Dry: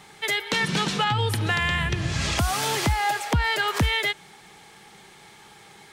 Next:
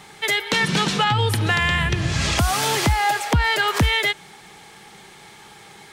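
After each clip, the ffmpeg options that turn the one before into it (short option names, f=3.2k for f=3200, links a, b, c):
-af "acontrast=77,volume=-2.5dB"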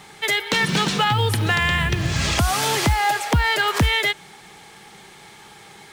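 -af "acrusher=bits=7:mode=log:mix=0:aa=0.000001"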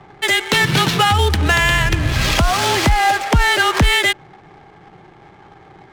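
-af "adynamicsmooth=sensitivity=6:basefreq=700,afreqshift=-26,volume=5dB"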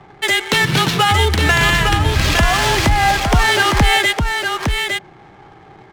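-af "aecho=1:1:859:0.562"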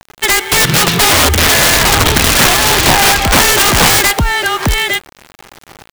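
-af "acrusher=bits=5:mix=0:aa=0.000001,aeval=exprs='(mod(2.82*val(0)+1,2)-1)/2.82':c=same,volume=5.5dB"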